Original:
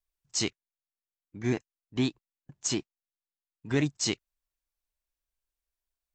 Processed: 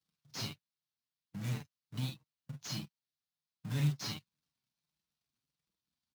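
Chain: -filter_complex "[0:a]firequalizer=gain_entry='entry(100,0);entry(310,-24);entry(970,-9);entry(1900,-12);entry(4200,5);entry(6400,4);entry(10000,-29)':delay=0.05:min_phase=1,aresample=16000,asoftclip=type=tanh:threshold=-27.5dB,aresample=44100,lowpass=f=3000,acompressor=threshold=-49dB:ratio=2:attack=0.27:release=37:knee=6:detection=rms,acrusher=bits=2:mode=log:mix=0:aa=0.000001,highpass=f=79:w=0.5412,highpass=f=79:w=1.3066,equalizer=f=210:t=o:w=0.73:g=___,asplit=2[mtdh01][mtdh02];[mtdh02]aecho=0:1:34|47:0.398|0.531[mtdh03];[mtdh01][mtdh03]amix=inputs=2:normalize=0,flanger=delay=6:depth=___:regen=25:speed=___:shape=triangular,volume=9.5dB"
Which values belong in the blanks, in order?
11.5, 1.7, 1.4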